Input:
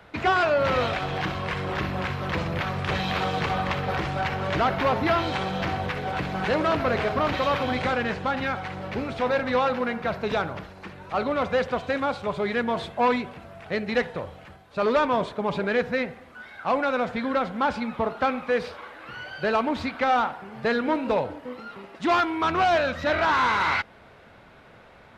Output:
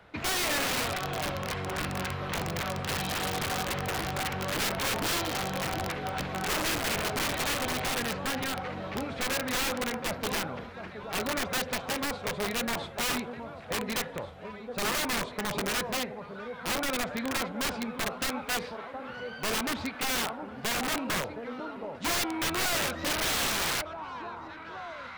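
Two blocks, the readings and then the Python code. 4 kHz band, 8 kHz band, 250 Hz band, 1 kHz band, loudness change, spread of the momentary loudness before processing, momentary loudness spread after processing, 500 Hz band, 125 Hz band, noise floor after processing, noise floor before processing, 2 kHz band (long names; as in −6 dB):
+3.0 dB, can't be measured, −6.0 dB, −8.5 dB, −5.0 dB, 11 LU, 11 LU, −9.5 dB, −6.0 dB, −43 dBFS, −51 dBFS, −4.0 dB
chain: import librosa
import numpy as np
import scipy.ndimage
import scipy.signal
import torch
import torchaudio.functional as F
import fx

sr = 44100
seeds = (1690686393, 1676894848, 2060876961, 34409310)

y = fx.echo_alternate(x, sr, ms=718, hz=1100.0, feedback_pct=69, wet_db=-11)
y = (np.mod(10.0 ** (19.5 / 20.0) * y + 1.0, 2.0) - 1.0) / 10.0 ** (19.5 / 20.0)
y = y * 10.0 ** (-5.0 / 20.0)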